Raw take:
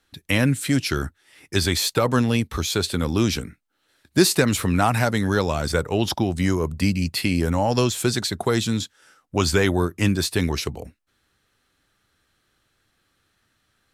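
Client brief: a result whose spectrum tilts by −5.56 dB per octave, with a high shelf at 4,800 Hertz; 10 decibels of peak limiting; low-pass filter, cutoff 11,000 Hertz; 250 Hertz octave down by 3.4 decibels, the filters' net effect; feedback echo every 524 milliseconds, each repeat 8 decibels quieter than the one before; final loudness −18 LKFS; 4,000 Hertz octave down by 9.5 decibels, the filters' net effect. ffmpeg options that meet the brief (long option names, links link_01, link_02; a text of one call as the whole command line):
ffmpeg -i in.wav -af "lowpass=11000,equalizer=frequency=250:width_type=o:gain=-4.5,equalizer=frequency=4000:width_type=o:gain=-8,highshelf=frequency=4800:gain=-7.5,alimiter=limit=-16.5dB:level=0:latency=1,aecho=1:1:524|1048|1572|2096|2620:0.398|0.159|0.0637|0.0255|0.0102,volume=10.5dB" out.wav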